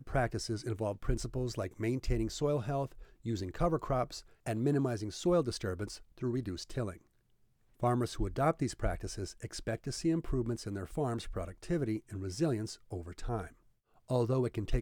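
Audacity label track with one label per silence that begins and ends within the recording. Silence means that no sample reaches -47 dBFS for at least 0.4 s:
6.970000	7.800000	silence
13.490000	14.100000	silence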